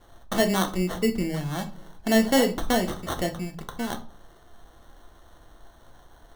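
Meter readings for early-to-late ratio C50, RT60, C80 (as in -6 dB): 14.0 dB, 0.45 s, 19.5 dB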